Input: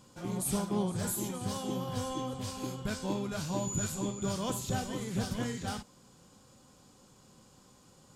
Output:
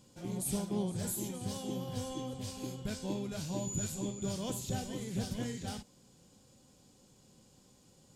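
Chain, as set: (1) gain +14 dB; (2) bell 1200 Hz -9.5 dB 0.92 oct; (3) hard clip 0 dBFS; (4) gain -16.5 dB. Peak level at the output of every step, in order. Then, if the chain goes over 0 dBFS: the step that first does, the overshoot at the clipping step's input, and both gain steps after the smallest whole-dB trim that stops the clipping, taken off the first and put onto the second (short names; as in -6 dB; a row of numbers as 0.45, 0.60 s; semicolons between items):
-4.5, -5.0, -5.0, -21.5 dBFS; no overload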